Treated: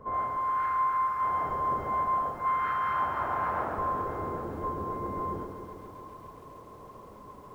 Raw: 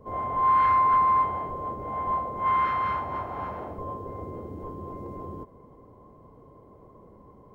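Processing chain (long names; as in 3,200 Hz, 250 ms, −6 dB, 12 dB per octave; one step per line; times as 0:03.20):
parametric band 1,400 Hz +13 dB 1.2 octaves
hum removal 92.46 Hz, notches 16
reversed playback
downward compressor 8 to 1, threshold −26 dBFS, peak gain reduction 15.5 dB
reversed playback
feedback echo with a high-pass in the loop 487 ms, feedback 18%, high-pass 180 Hz, level −22.5 dB
feedback echo at a low word length 135 ms, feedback 80%, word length 10 bits, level −8 dB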